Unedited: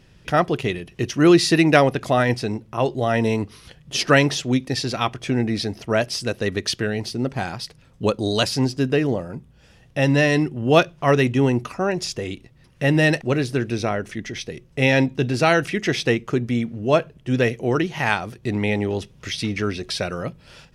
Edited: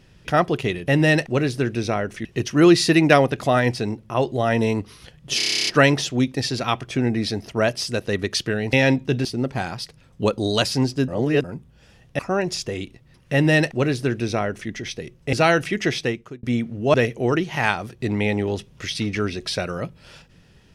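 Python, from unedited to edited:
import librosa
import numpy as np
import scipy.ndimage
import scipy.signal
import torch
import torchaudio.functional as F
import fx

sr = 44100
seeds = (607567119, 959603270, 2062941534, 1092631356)

y = fx.edit(x, sr, fx.stutter(start_s=4.0, slice_s=0.03, count=11),
    fx.reverse_span(start_s=8.89, length_s=0.36),
    fx.cut(start_s=10.0, length_s=1.69),
    fx.duplicate(start_s=12.83, length_s=1.37, to_s=0.88),
    fx.move(start_s=14.83, length_s=0.52, to_s=7.06),
    fx.fade_out_span(start_s=15.88, length_s=0.57),
    fx.cut(start_s=16.96, length_s=0.41), tone=tone)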